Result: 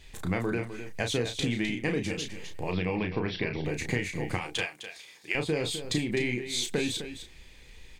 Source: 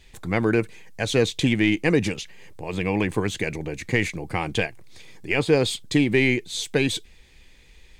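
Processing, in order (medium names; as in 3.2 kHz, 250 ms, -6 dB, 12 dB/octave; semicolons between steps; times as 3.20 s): 4.37–5.35 s: high-pass 1.5 kHz 6 dB/octave; compression, threshold -27 dBFS, peak gain reduction 13 dB; 2.70–3.65 s: brick-wall FIR low-pass 5.8 kHz; doubling 33 ms -6 dB; on a send: delay 256 ms -11 dB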